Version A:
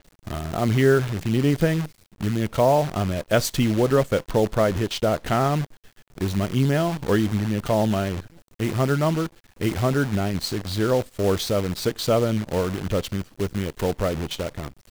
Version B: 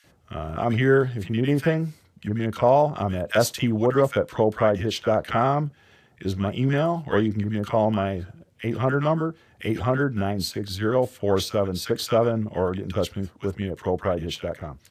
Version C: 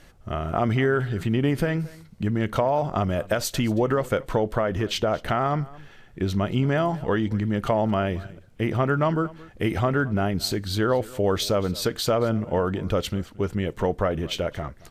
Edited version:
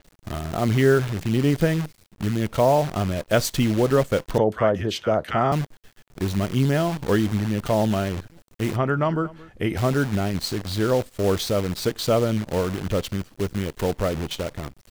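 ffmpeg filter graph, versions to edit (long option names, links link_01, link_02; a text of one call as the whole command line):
ffmpeg -i take0.wav -i take1.wav -i take2.wav -filter_complex "[0:a]asplit=3[link_01][link_02][link_03];[link_01]atrim=end=4.382[link_04];[1:a]atrim=start=4.378:end=5.522[link_05];[link_02]atrim=start=5.518:end=8.762[link_06];[2:a]atrim=start=8.758:end=9.772[link_07];[link_03]atrim=start=9.768[link_08];[link_04][link_05]acrossfade=duration=0.004:curve1=hsin:curve2=hsin[link_09];[link_09][link_06]acrossfade=duration=0.004:curve1=hsin:curve2=hsin[link_10];[link_10][link_07]acrossfade=duration=0.004:curve1=hsin:curve2=hsin[link_11];[link_11][link_08]acrossfade=duration=0.004:curve1=hsin:curve2=hsin" out.wav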